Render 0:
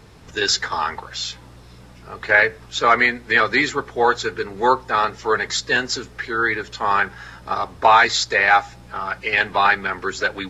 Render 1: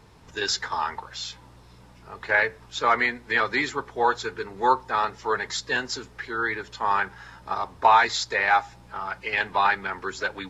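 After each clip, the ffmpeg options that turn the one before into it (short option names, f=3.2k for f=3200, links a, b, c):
-af "equalizer=f=940:t=o:w=0.32:g=6.5,volume=-7dB"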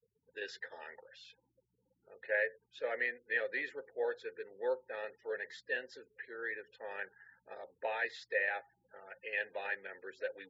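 -filter_complex "[0:a]afftfilt=real='re*gte(hypot(re,im),0.00891)':imag='im*gte(hypot(re,im),0.00891)':win_size=1024:overlap=0.75,asplit=3[a][b][c];[a]bandpass=f=530:t=q:w=8,volume=0dB[d];[b]bandpass=f=1.84k:t=q:w=8,volume=-6dB[e];[c]bandpass=f=2.48k:t=q:w=8,volume=-9dB[f];[d][e][f]amix=inputs=3:normalize=0,volume=-2dB"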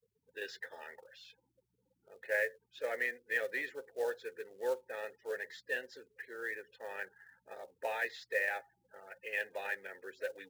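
-af "acrusher=bits=5:mode=log:mix=0:aa=0.000001"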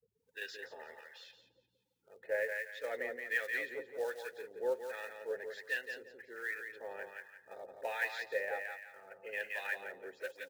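-filter_complex "[0:a]asplit=2[a][b];[b]aecho=0:1:173|346|519|692:0.501|0.14|0.0393|0.011[c];[a][c]amix=inputs=2:normalize=0,acrossover=split=910[d][e];[d]aeval=exprs='val(0)*(1-0.7/2+0.7/2*cos(2*PI*1.3*n/s))':c=same[f];[e]aeval=exprs='val(0)*(1-0.7/2-0.7/2*cos(2*PI*1.3*n/s))':c=same[g];[f][g]amix=inputs=2:normalize=0,volume=1.5dB"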